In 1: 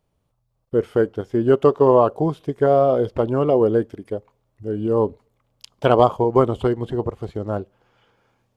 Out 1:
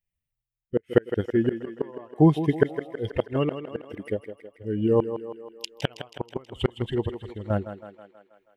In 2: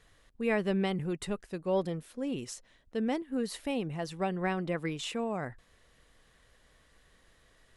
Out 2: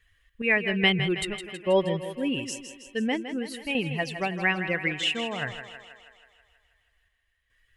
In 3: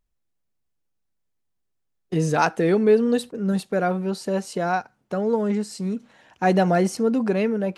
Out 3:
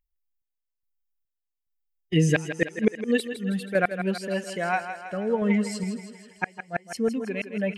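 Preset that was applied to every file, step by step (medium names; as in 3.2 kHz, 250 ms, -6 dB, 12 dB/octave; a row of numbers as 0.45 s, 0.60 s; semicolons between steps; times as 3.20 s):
expander on every frequency bin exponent 1.5; high-order bell 2.3 kHz +12.5 dB 1.1 oct; inverted gate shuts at -11 dBFS, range -35 dB; random-step tremolo 2.4 Hz, depth 70%; thinning echo 161 ms, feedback 61%, high-pass 230 Hz, level -9.5 dB; normalise loudness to -27 LUFS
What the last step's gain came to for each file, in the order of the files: +7.0 dB, +9.0 dB, +4.0 dB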